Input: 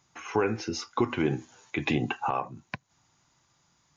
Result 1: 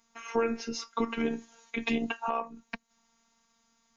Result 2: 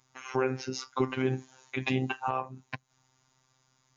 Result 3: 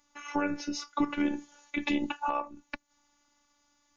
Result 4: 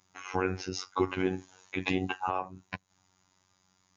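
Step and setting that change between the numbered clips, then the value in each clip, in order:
phases set to zero, frequency: 230, 130, 290, 93 Hertz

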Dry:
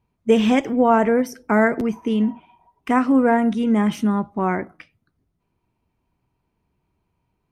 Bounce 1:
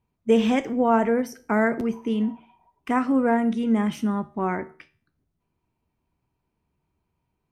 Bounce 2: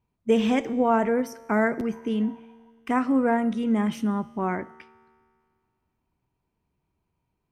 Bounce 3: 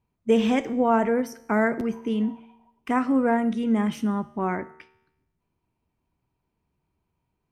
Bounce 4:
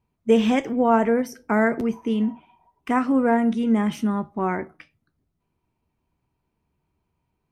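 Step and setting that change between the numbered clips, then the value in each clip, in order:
tuned comb filter, decay: 0.42, 2, 0.89, 0.18 seconds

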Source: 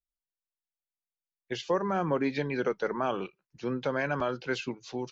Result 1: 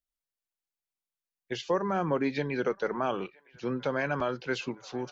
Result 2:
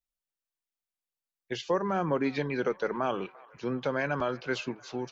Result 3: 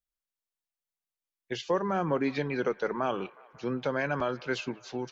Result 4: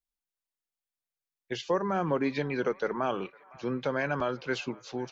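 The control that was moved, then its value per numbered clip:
delay with a band-pass on its return, delay time: 971, 342, 181, 507 milliseconds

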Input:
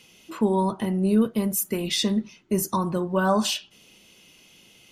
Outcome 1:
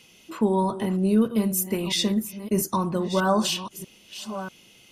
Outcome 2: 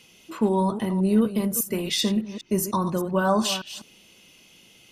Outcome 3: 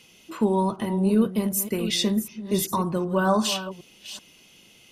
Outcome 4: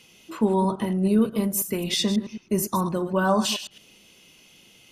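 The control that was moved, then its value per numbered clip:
delay that plays each chunk backwards, delay time: 641, 201, 381, 108 milliseconds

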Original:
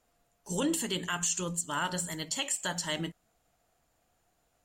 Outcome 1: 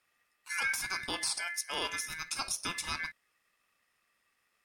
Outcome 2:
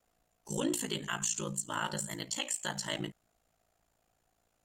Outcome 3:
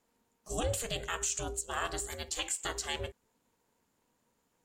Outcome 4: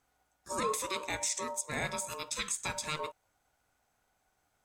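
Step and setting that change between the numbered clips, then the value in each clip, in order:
ring modulation, frequency: 1,900, 28, 230, 760 Hertz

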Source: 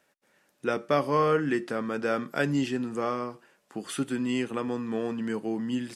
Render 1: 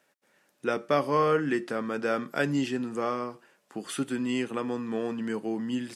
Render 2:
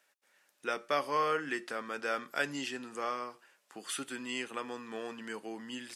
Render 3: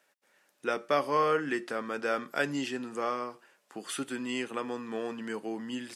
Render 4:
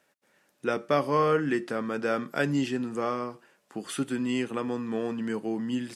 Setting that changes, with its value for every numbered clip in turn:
high-pass filter, corner frequency: 110, 1,300, 530, 43 Hertz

